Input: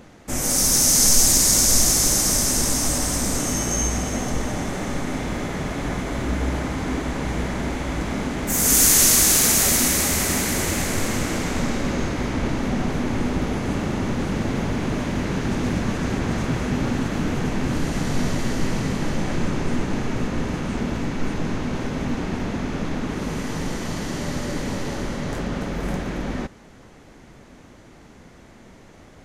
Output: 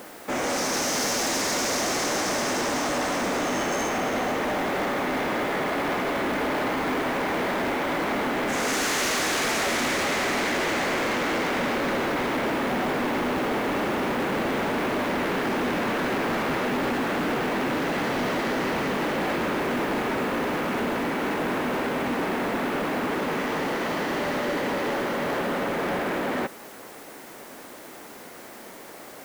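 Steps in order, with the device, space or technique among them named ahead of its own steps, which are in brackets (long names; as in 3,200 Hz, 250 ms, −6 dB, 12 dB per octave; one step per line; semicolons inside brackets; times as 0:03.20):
aircraft radio (band-pass filter 380–2,500 Hz; hard clipping −31 dBFS, distortion −9 dB; white noise bed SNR 22 dB)
level +8 dB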